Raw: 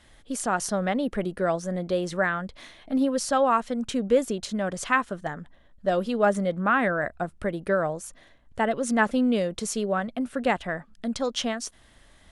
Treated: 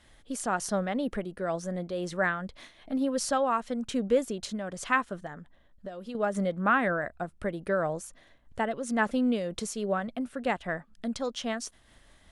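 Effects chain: 5.19–6.15 s: compression 6:1, threshold -32 dBFS, peak gain reduction 12.5 dB; random flutter of the level, depth 65%

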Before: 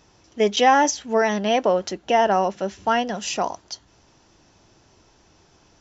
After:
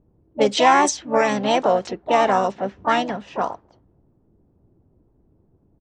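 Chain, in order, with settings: harmony voices -7 st -17 dB, +4 st -8 dB, +5 st -9 dB; level-controlled noise filter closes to 310 Hz, open at -14.5 dBFS

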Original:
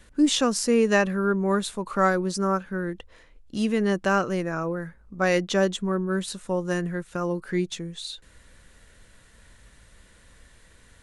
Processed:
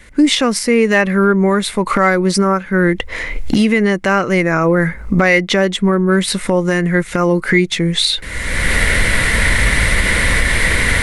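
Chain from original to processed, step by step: recorder AGC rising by 30 dB/s; dynamic bell 6.8 kHz, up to -7 dB, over -45 dBFS, Q 2.7; in parallel at 0 dB: peak limiter -14 dBFS, peak gain reduction 10 dB; on the sum: hard clipper -6.5 dBFS, distortion -32 dB; peaking EQ 2.1 kHz +14.5 dB 0.27 oct; trim +2.5 dB

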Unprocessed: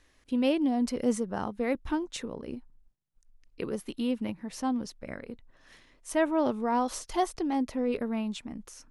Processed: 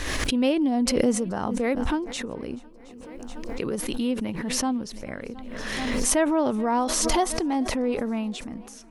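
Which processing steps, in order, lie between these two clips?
on a send: shuffle delay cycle 717 ms, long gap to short 1.5:1, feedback 49%, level -24 dB; on the sum: swell ahead of each attack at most 23 dB/s; trim +3 dB

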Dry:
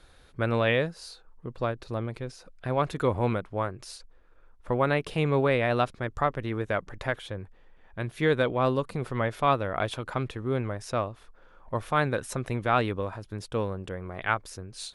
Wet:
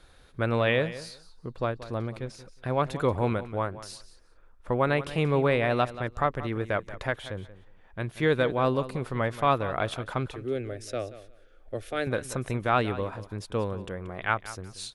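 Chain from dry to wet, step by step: 10.26–12.07 s: static phaser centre 410 Hz, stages 4; feedback delay 181 ms, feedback 18%, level -15 dB

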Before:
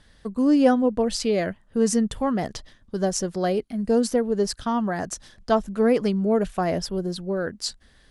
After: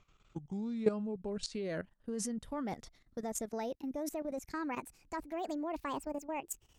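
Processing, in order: gliding tape speed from 69% -> 170%; level held to a coarse grid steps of 14 dB; trim -9 dB

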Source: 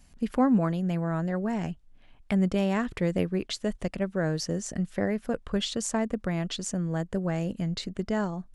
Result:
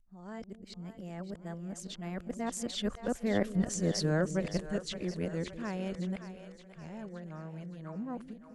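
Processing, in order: reverse the whole clip; Doppler pass-by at 3.78 s, 14 m/s, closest 8.3 m; two-band feedback delay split 450 Hz, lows 200 ms, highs 568 ms, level -11 dB

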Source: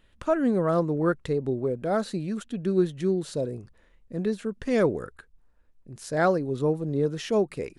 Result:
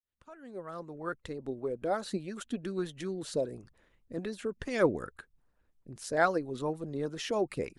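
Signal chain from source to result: fade-in on the opening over 2.39 s; harmonic-percussive split harmonic -12 dB

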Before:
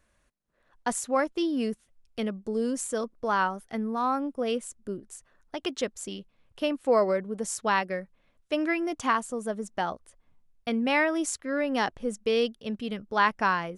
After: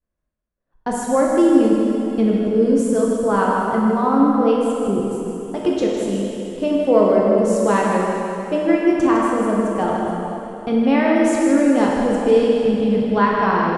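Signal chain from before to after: expander -54 dBFS; tilt shelf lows +8 dB, about 940 Hz; in parallel at -2 dB: peak limiter -22.5 dBFS, peak gain reduction 13.5 dB; on the sum: delay 157 ms -8.5 dB; reverberation RT60 3.1 s, pre-delay 5 ms, DRR -3.5 dB

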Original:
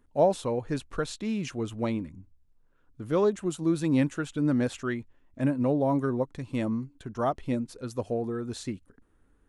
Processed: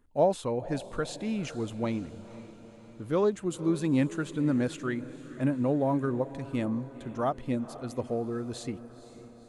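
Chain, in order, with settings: band-stop 5.6 kHz, Q 17; echo that smears into a reverb 494 ms, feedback 57%, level -15.5 dB; trim -1.5 dB

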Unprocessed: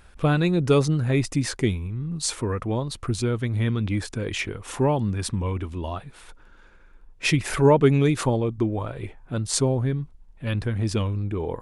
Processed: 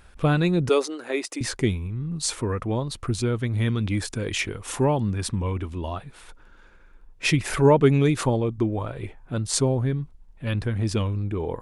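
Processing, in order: 0.69–1.41 s: inverse Chebyshev high-pass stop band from 160 Hz, stop band 40 dB; 3.58–4.85 s: treble shelf 4.2 kHz +6 dB

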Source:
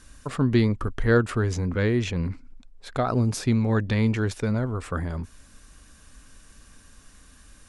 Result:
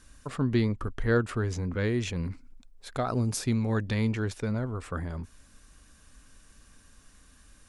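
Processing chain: 1.83–4.07 s: treble shelf 6.9 kHz +10 dB; trim -5 dB

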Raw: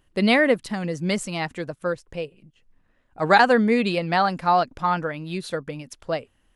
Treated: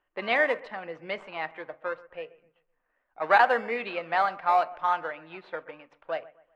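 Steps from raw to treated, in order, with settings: in parallel at -11 dB: decimation with a swept rate 25×, swing 60% 0.75 Hz; on the sum: three-band isolator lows -22 dB, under 520 Hz, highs -22 dB, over 3.1 kHz; bucket-brigade echo 128 ms, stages 2048, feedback 37%, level -20.5 dB; on a send at -14 dB: reverberation RT60 0.30 s, pre-delay 3 ms; on the sum: level-controlled noise filter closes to 2.4 kHz, open at -15 dBFS; bass shelf 160 Hz -3 dB; trim -3 dB; Vorbis 128 kbps 32 kHz

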